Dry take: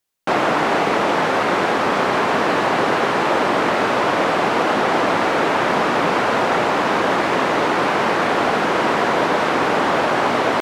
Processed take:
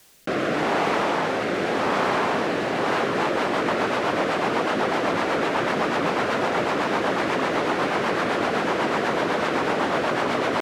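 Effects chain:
rotating-speaker cabinet horn 0.85 Hz, later 8 Hz, at 0:02.70
envelope flattener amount 50%
level −4.5 dB

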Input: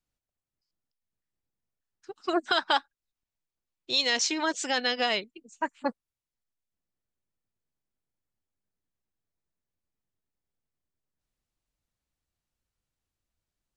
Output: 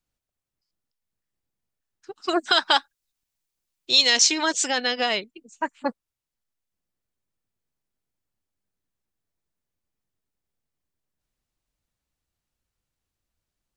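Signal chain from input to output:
0:02.22–0:04.68: high-shelf EQ 3,000 Hz +9 dB
level +3 dB

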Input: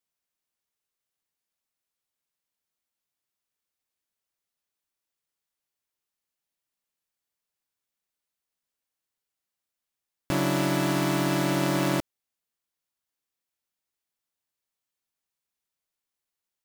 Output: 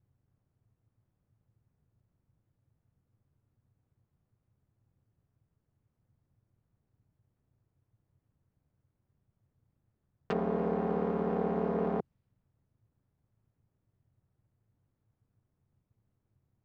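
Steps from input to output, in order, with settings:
Butterworth high-pass 230 Hz 48 dB per octave
treble cut that deepens with the level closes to 770 Hz, closed at −25.5 dBFS
background noise brown −72 dBFS
ring modulation 110 Hz
low-pass that shuts in the quiet parts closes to 1,700 Hz, open at −30.5 dBFS

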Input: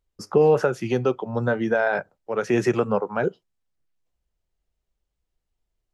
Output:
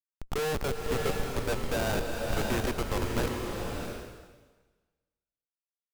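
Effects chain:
high-pass filter 1,500 Hz 6 dB per octave
steady tone 2,400 Hz −55 dBFS
pitch vibrato 4.1 Hz 7 cents
comparator with hysteresis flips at −28.5 dBFS
slow-attack reverb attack 660 ms, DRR 1 dB
level +5.5 dB

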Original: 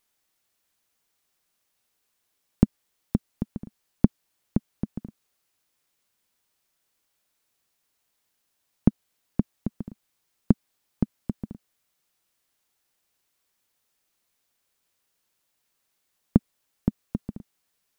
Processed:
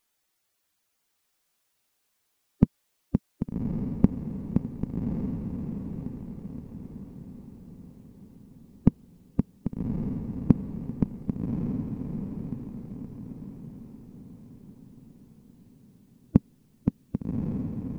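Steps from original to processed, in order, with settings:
spectral magnitudes quantised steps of 15 dB
feedback delay with all-pass diffusion 1,162 ms, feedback 43%, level −3.5 dB

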